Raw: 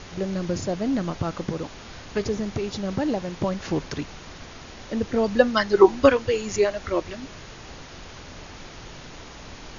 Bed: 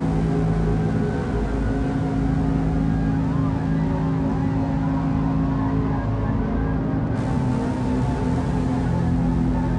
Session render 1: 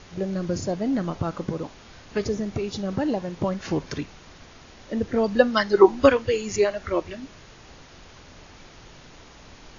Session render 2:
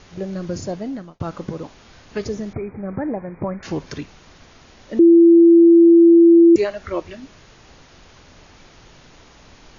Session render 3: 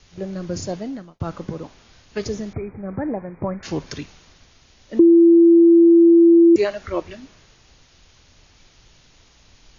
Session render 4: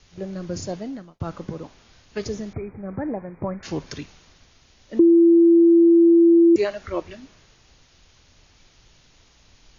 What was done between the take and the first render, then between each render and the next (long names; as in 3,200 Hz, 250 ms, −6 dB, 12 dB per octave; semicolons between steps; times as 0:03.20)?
noise reduction from a noise print 6 dB
0:00.74–0:01.20: fade out; 0:02.53–0:03.63: linear-phase brick-wall low-pass 2,500 Hz; 0:04.99–0:06.56: beep over 337 Hz −6 dBFS
downward compressor, threshold −12 dBFS, peak gain reduction 4.5 dB; multiband upward and downward expander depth 40%
level −2.5 dB